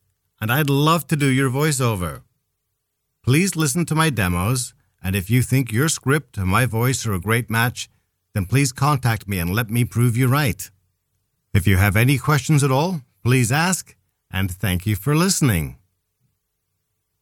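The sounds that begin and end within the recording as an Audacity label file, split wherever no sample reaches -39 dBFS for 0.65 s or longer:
3.270000	10.670000	sound
11.540000	15.750000	sound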